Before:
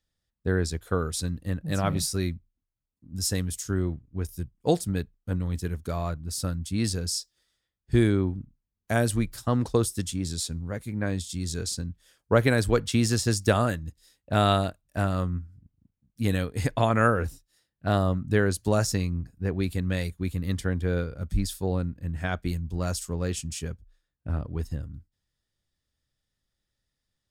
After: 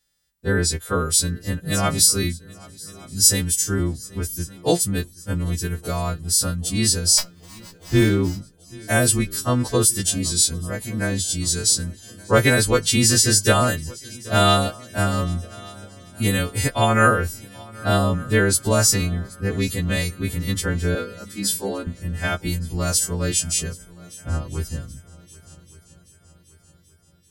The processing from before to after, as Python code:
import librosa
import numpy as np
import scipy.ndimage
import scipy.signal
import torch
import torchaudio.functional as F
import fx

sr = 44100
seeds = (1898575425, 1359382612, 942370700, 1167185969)

y = fx.freq_snap(x, sr, grid_st=2)
y = fx.cheby1_highpass(y, sr, hz=200.0, order=8, at=(20.95, 21.87))
y = fx.echo_heads(y, sr, ms=390, heads='second and third', feedback_pct=50, wet_db=-23.0)
y = fx.running_max(y, sr, window=3, at=(7.17, 8.4), fade=0.02)
y = y * librosa.db_to_amplitude(5.0)